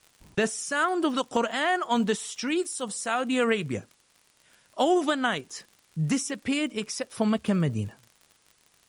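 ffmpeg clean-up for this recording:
-af "adeclick=t=4,agate=range=-21dB:threshold=-56dB"

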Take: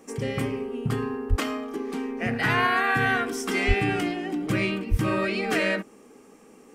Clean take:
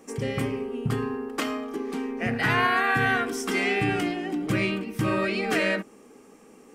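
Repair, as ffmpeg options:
-filter_complex "[0:a]asplit=3[a][b][c];[a]afade=t=out:st=1.29:d=0.02[d];[b]highpass=f=140:w=0.5412,highpass=f=140:w=1.3066,afade=t=in:st=1.29:d=0.02,afade=t=out:st=1.41:d=0.02[e];[c]afade=t=in:st=1.41:d=0.02[f];[d][e][f]amix=inputs=3:normalize=0,asplit=3[g][h][i];[g]afade=t=out:st=3.67:d=0.02[j];[h]highpass=f=140:w=0.5412,highpass=f=140:w=1.3066,afade=t=in:st=3.67:d=0.02,afade=t=out:st=3.79:d=0.02[k];[i]afade=t=in:st=3.79:d=0.02[l];[j][k][l]amix=inputs=3:normalize=0,asplit=3[m][n][o];[m]afade=t=out:st=4.9:d=0.02[p];[n]highpass=f=140:w=0.5412,highpass=f=140:w=1.3066,afade=t=in:st=4.9:d=0.02,afade=t=out:st=5.02:d=0.02[q];[o]afade=t=in:st=5.02:d=0.02[r];[p][q][r]amix=inputs=3:normalize=0"

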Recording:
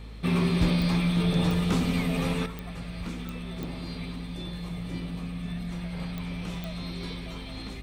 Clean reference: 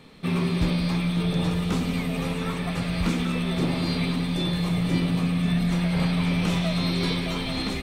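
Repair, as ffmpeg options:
-af "adeclick=t=4,bandreject=f=54.1:t=h:w=4,bandreject=f=108.2:t=h:w=4,bandreject=f=162.3:t=h:w=4,bandreject=f=216.4:t=h:w=4,asetnsamples=n=441:p=0,asendcmd='2.46 volume volume 11.5dB',volume=0dB"

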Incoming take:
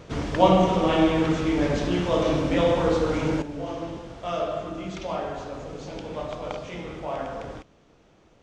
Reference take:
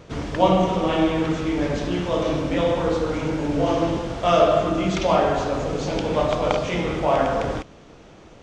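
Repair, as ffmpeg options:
-af "asetnsamples=n=441:p=0,asendcmd='3.42 volume volume 11.5dB',volume=0dB"

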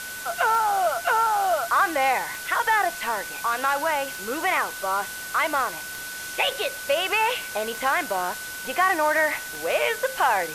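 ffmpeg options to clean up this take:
-af "adeclick=t=4,bandreject=f=1.5k:w=30,afftdn=nr=30:nf=-35"

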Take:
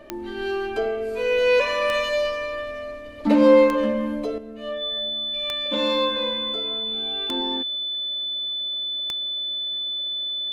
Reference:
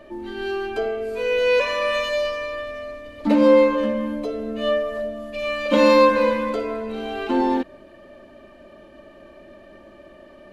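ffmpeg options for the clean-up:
-af "adeclick=t=4,bandreject=f=3.5k:w=30,asetnsamples=n=441:p=0,asendcmd='4.38 volume volume 9.5dB',volume=0dB"

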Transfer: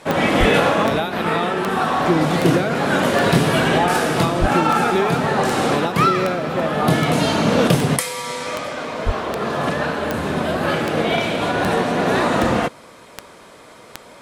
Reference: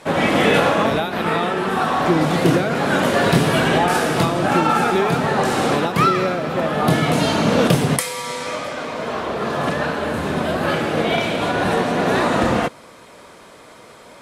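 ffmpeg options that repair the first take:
-filter_complex "[0:a]adeclick=t=4,asplit=3[a][b][c];[a]afade=t=out:st=0.39:d=0.02[d];[b]highpass=f=140:w=0.5412,highpass=f=140:w=1.3066,afade=t=in:st=0.39:d=0.02,afade=t=out:st=0.51:d=0.02[e];[c]afade=t=in:st=0.51:d=0.02[f];[d][e][f]amix=inputs=3:normalize=0,asplit=3[g][h][i];[g]afade=t=out:st=4.4:d=0.02[j];[h]highpass=f=140:w=0.5412,highpass=f=140:w=1.3066,afade=t=in:st=4.4:d=0.02,afade=t=out:st=4.52:d=0.02[k];[i]afade=t=in:st=4.52:d=0.02[l];[j][k][l]amix=inputs=3:normalize=0,asplit=3[m][n][o];[m]afade=t=out:st=9.05:d=0.02[p];[n]highpass=f=140:w=0.5412,highpass=f=140:w=1.3066,afade=t=in:st=9.05:d=0.02,afade=t=out:st=9.17:d=0.02[q];[o]afade=t=in:st=9.17:d=0.02[r];[p][q][r]amix=inputs=3:normalize=0"

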